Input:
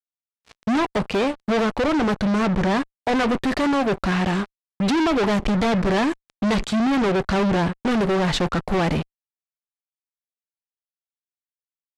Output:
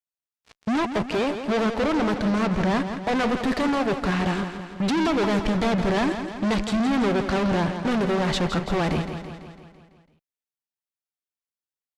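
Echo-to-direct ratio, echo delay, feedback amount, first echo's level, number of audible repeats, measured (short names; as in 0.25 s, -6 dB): -7.0 dB, 0.167 s, 58%, -9.0 dB, 6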